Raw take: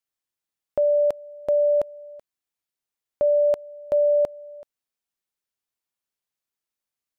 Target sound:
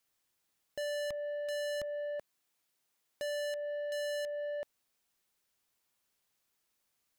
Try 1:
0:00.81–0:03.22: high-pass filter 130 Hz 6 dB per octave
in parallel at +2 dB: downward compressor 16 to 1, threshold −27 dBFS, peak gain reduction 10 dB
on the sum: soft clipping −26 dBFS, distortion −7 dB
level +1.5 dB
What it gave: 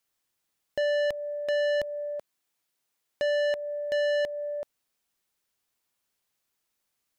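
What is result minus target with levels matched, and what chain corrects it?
soft clipping: distortion −6 dB
0:00.81–0:03.22: high-pass filter 130 Hz 6 dB per octave
in parallel at +2 dB: downward compressor 16 to 1, threshold −27 dBFS, peak gain reduction 10 dB
on the sum: soft clipping −37 dBFS, distortion −2 dB
level +1.5 dB

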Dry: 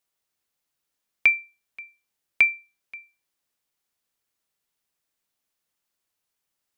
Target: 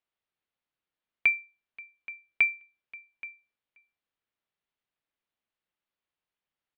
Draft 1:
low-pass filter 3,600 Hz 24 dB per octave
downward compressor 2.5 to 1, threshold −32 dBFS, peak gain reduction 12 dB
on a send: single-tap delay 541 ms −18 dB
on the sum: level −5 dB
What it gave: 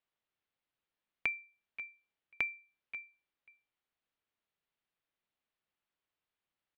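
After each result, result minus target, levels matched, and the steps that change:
downward compressor: peak gain reduction +12 dB; echo 285 ms early
remove: downward compressor 2.5 to 1, threshold −32 dBFS, peak gain reduction 12 dB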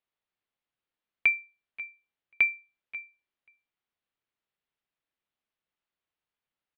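echo 285 ms early
change: single-tap delay 826 ms −18 dB

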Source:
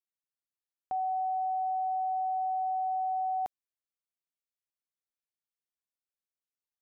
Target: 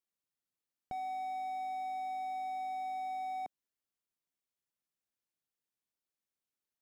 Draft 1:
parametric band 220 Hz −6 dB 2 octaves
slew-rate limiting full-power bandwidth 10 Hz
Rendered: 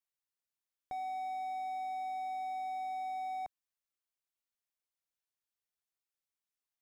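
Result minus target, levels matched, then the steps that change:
250 Hz band −4.0 dB
change: parametric band 220 Hz +5.5 dB 2 octaves

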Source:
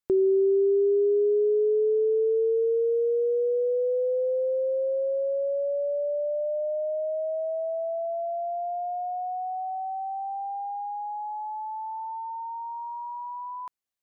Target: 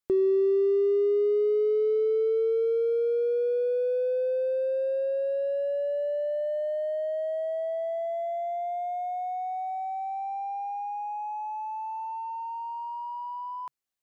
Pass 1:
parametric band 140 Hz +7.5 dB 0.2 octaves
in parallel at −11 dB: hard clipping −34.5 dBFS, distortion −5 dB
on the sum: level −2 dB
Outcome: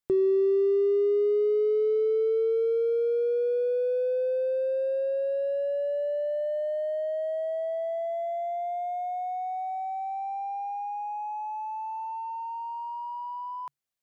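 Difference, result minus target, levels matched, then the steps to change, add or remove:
125 Hz band +3.0 dB
change: parametric band 140 Hz −3.5 dB 0.2 octaves

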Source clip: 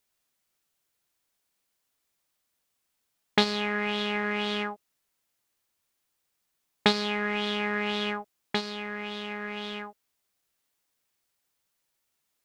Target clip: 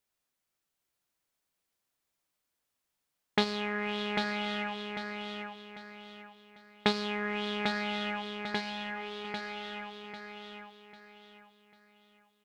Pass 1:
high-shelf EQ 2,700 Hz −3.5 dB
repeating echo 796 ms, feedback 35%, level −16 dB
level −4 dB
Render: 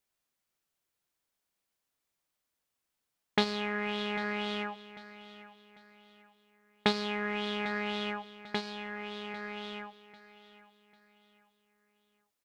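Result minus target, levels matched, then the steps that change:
echo-to-direct −11 dB
change: repeating echo 796 ms, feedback 35%, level −5 dB

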